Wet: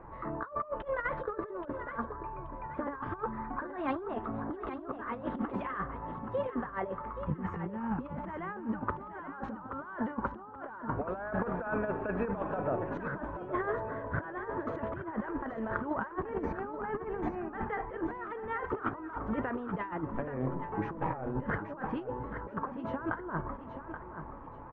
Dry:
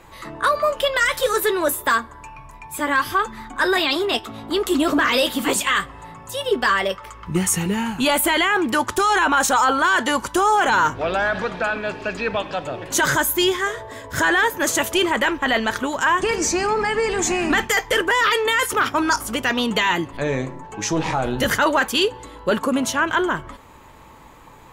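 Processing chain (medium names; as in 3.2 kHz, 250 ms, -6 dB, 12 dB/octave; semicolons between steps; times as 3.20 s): low-pass 1.4 kHz 24 dB/octave; compressor with a negative ratio -27 dBFS, ratio -0.5; feedback delay 828 ms, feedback 33%, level -9.5 dB; trim -8 dB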